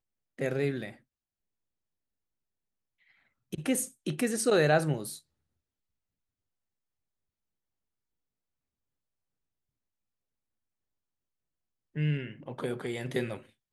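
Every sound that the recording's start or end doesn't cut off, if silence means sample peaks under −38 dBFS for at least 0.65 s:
0:03.53–0:05.17

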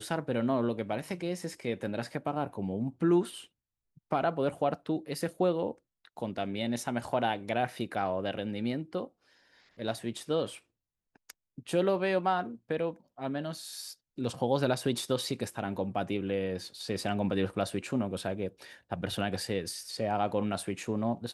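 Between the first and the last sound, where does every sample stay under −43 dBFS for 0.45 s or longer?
0:03.43–0:04.11
0:09.07–0:09.79
0:10.57–0:11.30

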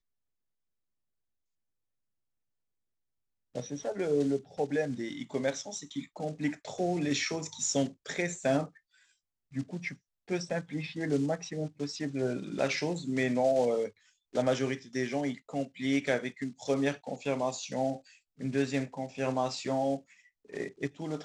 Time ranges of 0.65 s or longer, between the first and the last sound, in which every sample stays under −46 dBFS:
0:08.68–0:09.53

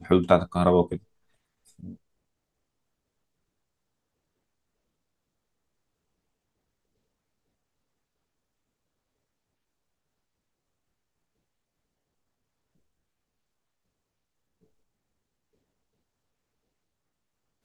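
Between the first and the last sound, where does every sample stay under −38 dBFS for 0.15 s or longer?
0:00.97–0:01.80

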